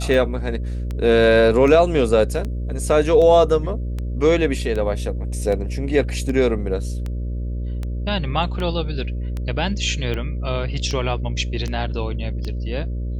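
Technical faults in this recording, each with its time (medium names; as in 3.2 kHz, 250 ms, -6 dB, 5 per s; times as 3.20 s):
buzz 60 Hz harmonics 10 -25 dBFS
tick 78 rpm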